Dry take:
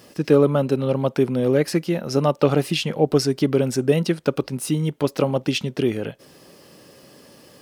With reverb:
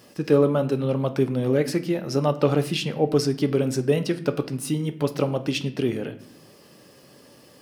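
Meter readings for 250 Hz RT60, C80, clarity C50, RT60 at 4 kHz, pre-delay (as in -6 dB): 1.2 s, 17.5 dB, 14.5 dB, 0.45 s, 7 ms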